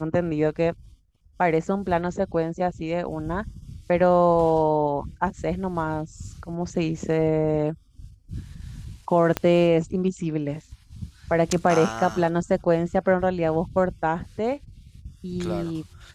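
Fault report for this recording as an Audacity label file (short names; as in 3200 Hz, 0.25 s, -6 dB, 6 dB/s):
9.370000	9.370000	pop -9 dBFS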